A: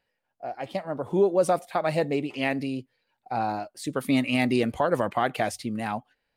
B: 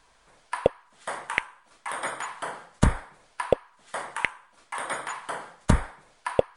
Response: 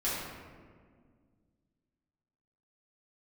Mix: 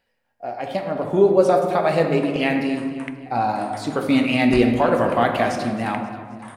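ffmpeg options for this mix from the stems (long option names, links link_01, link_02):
-filter_complex "[0:a]acrossover=split=6500[link_01][link_02];[link_02]acompressor=threshold=-52dB:ratio=4:attack=1:release=60[link_03];[link_01][link_03]amix=inputs=2:normalize=0,volume=2dB,asplit=3[link_04][link_05][link_06];[link_05]volume=-7.5dB[link_07];[link_06]volume=-14.5dB[link_08];[1:a]adelay=1700,volume=-11dB,asplit=2[link_09][link_10];[link_10]volume=-18.5dB[link_11];[2:a]atrim=start_sample=2205[link_12];[link_07][link_11]amix=inputs=2:normalize=0[link_13];[link_13][link_12]afir=irnorm=-1:irlink=0[link_14];[link_08]aecho=0:1:266|532|798|1064|1330|1596|1862:1|0.51|0.26|0.133|0.0677|0.0345|0.0176[link_15];[link_04][link_09][link_14][link_15]amix=inputs=4:normalize=0"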